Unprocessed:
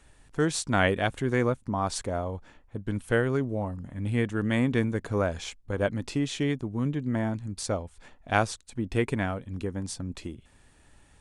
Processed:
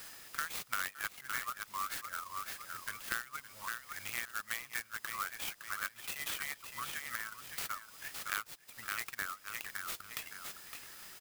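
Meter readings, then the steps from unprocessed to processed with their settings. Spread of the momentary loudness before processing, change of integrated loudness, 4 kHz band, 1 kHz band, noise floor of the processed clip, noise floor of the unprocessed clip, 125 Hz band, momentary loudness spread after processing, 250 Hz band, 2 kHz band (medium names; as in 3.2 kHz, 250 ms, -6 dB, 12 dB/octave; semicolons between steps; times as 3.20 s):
11 LU, -11.0 dB, -5.0 dB, -8.5 dB, -60 dBFS, -59 dBFS, -32.5 dB, 6 LU, -32.5 dB, -5.0 dB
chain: tracing distortion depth 0.15 ms; whistle 5 kHz -55 dBFS; reverb removal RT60 1.2 s; elliptic high-pass 1.2 kHz, stop band 40 dB; treble shelf 3.5 kHz -8 dB; on a send: feedback delay 562 ms, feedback 23%, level -12 dB; on the sum: compression 4:1, threshold -52 dBFS, peak gain reduction 23 dB; sampling jitter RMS 0.054 ms; trim +14 dB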